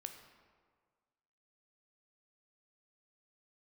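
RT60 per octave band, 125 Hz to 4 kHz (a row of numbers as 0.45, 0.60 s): 1.7, 1.6, 1.7, 1.7, 1.3, 0.95 s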